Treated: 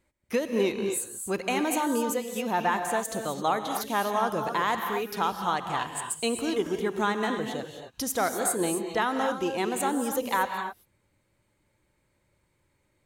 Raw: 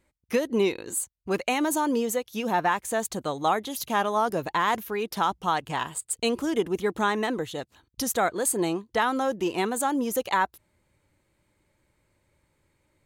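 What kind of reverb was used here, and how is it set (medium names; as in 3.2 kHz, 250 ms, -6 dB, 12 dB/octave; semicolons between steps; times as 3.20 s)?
gated-style reverb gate 290 ms rising, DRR 5 dB; trim -2.5 dB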